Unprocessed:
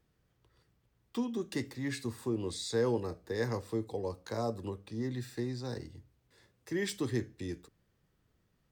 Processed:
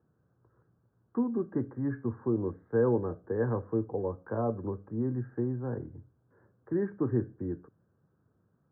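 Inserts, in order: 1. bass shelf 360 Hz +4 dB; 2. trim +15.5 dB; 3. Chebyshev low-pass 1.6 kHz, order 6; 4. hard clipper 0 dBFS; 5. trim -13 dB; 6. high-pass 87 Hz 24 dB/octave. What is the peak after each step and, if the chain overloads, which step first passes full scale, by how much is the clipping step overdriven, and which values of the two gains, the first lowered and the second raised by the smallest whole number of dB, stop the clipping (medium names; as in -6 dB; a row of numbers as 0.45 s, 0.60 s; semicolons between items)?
-17.0 dBFS, -1.5 dBFS, -1.5 dBFS, -1.5 dBFS, -14.5 dBFS, -15.0 dBFS; nothing clips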